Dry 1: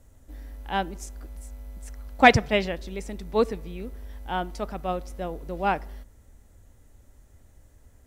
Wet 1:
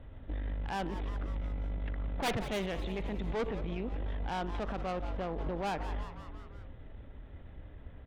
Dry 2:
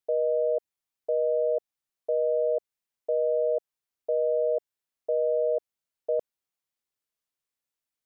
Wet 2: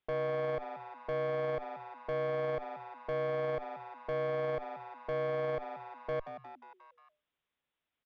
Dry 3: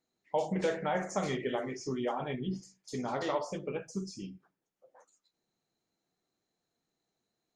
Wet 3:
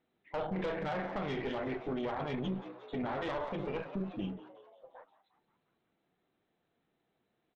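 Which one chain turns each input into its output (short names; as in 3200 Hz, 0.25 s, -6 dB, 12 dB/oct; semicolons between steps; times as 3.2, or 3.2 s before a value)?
one-sided fold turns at -13.5 dBFS; in parallel at +2.5 dB: compressor 6:1, threshold -35 dBFS; on the sum: downsampling 8000 Hz; tube stage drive 26 dB, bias 0.8; on a send: frequency-shifting echo 0.178 s, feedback 58%, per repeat +120 Hz, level -18.5 dB; on the sum: limiter -31.5 dBFS; gain +4 dB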